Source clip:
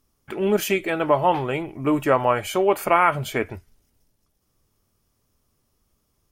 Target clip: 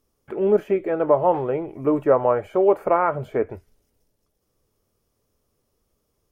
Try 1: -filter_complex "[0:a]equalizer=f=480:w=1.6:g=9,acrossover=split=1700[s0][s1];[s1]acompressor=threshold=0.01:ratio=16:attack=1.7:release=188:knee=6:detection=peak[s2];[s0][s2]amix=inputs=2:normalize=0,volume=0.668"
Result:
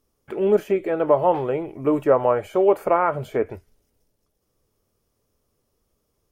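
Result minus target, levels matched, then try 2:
compression: peak gain reduction -10.5 dB
-filter_complex "[0:a]equalizer=f=480:w=1.6:g=9,acrossover=split=1700[s0][s1];[s1]acompressor=threshold=0.00282:ratio=16:attack=1.7:release=188:knee=6:detection=peak[s2];[s0][s2]amix=inputs=2:normalize=0,volume=0.668"

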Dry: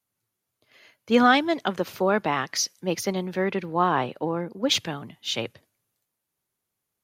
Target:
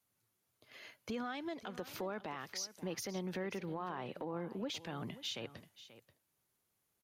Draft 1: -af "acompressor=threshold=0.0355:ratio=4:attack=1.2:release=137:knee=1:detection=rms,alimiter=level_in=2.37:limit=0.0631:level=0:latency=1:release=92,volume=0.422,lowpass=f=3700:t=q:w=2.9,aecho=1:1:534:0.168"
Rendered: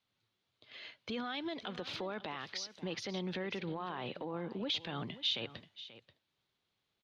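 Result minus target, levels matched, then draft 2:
compression: peak gain reduction -5.5 dB; 4 kHz band +5.0 dB
-af "acompressor=threshold=0.015:ratio=4:attack=1.2:release=137:knee=1:detection=rms,alimiter=level_in=2.37:limit=0.0631:level=0:latency=1:release=92,volume=0.422,aecho=1:1:534:0.168"

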